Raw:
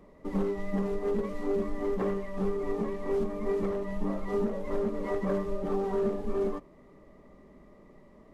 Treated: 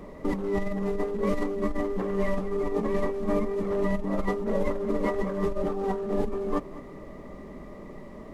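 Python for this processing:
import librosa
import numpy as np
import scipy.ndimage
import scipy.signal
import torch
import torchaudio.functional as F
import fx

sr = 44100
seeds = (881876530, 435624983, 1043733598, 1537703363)

p1 = fx.over_compress(x, sr, threshold_db=-35.0, ratio=-1.0)
p2 = p1 + fx.echo_single(p1, sr, ms=206, db=-16.0, dry=0)
y = p2 * librosa.db_to_amplitude(7.5)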